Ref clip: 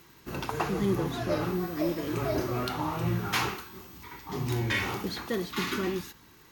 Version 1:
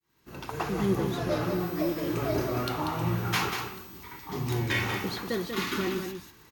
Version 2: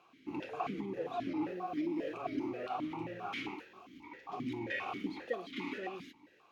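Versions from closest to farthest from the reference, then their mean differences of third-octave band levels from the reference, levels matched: 1, 2; 3.0 dB, 10.0 dB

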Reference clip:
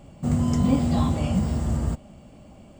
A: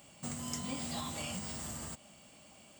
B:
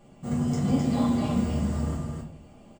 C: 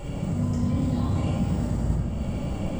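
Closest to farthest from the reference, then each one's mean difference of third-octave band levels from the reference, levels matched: B, C, A; 3.5 dB, 7.5 dB, 11.0 dB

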